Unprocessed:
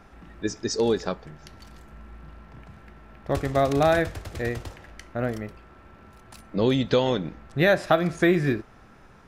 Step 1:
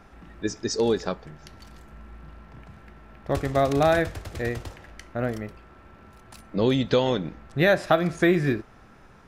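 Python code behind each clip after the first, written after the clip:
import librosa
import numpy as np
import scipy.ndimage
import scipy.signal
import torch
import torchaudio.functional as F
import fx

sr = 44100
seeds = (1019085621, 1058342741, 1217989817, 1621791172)

y = x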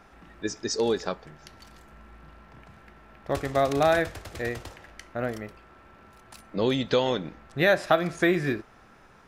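y = fx.low_shelf(x, sr, hz=290.0, db=-7.0)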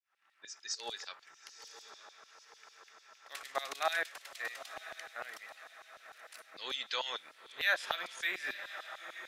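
y = fx.fade_in_head(x, sr, length_s=0.93)
y = fx.echo_diffused(y, sr, ms=980, feedback_pct=46, wet_db=-12)
y = fx.filter_lfo_highpass(y, sr, shape='saw_down', hz=6.7, low_hz=880.0, high_hz=4200.0, q=1.2)
y = F.gain(torch.from_numpy(y), -5.0).numpy()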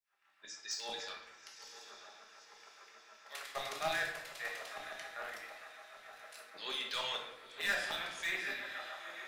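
y = np.clip(10.0 ** (30.0 / 20.0) * x, -1.0, 1.0) / 10.0 ** (30.0 / 20.0)
y = fx.room_shoebox(y, sr, seeds[0], volume_m3=270.0, walls='mixed', distance_m=1.3)
y = F.gain(torch.from_numpy(y), -3.0).numpy()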